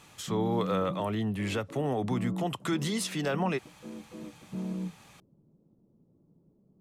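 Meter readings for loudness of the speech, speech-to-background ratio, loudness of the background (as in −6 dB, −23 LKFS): −31.5 LKFS, 7.5 dB, −39.0 LKFS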